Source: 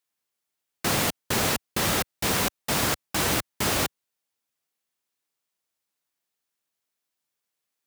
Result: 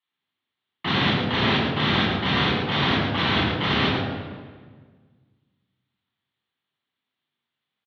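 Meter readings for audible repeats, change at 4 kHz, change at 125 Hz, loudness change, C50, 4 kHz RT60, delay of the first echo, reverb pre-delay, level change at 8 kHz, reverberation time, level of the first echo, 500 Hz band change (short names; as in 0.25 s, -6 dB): 2, +5.5 dB, +7.5 dB, +3.0 dB, 0.5 dB, 1.1 s, 0.11 s, 3 ms, under -25 dB, 1.6 s, -5.0 dB, +3.0 dB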